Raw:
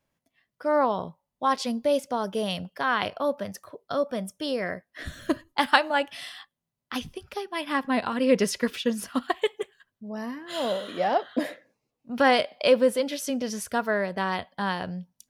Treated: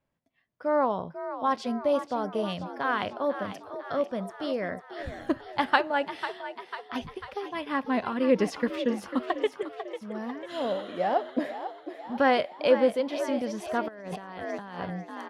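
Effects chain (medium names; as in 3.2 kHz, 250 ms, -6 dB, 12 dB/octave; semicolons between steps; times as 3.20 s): on a send: frequency-shifting echo 496 ms, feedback 58%, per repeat +58 Hz, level -11 dB; 13.88–14.80 s: on the sum: compressor with a negative ratio -37 dBFS, ratio -1; low-pass 2 kHz 6 dB/octave; trim -1.5 dB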